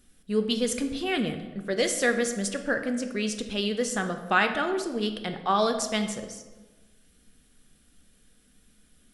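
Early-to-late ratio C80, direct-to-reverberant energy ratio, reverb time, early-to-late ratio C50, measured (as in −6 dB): 11.0 dB, 6.0 dB, 1.3 s, 9.0 dB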